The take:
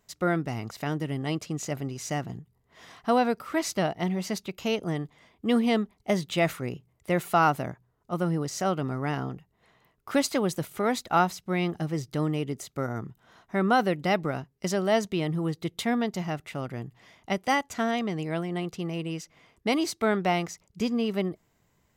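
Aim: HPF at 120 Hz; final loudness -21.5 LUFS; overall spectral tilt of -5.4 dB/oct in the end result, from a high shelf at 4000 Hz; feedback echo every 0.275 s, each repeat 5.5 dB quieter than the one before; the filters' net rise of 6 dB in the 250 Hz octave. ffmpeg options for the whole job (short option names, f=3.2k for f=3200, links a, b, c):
-af "highpass=120,equalizer=f=250:t=o:g=8,highshelf=f=4k:g=5.5,aecho=1:1:275|550|825|1100|1375|1650|1925:0.531|0.281|0.149|0.079|0.0419|0.0222|0.0118,volume=2.5dB"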